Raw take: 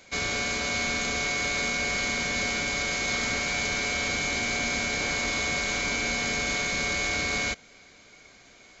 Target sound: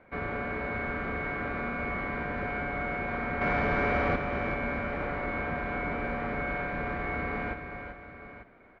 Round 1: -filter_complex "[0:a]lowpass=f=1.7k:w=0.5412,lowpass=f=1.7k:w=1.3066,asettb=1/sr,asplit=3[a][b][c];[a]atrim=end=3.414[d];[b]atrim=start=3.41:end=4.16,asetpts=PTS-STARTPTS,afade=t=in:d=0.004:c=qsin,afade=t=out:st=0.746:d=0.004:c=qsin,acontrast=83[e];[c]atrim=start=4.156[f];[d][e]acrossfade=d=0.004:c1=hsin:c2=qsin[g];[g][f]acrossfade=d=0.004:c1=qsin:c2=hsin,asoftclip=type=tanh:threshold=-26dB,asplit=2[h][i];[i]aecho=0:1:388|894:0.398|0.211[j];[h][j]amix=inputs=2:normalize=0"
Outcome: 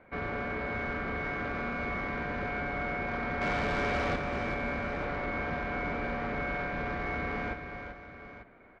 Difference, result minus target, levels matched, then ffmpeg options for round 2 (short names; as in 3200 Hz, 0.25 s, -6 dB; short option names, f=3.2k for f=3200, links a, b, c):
soft clip: distortion +13 dB
-filter_complex "[0:a]lowpass=f=1.7k:w=0.5412,lowpass=f=1.7k:w=1.3066,asettb=1/sr,asplit=3[a][b][c];[a]atrim=end=3.414[d];[b]atrim=start=3.41:end=4.16,asetpts=PTS-STARTPTS,afade=t=in:d=0.004:c=qsin,afade=t=out:st=0.746:d=0.004:c=qsin,acontrast=83[e];[c]atrim=start=4.156[f];[d][e]acrossfade=d=0.004:c1=hsin:c2=qsin[g];[g][f]acrossfade=d=0.004:c1=qsin:c2=hsin,asoftclip=type=tanh:threshold=-16dB,asplit=2[h][i];[i]aecho=0:1:388|894:0.398|0.211[j];[h][j]amix=inputs=2:normalize=0"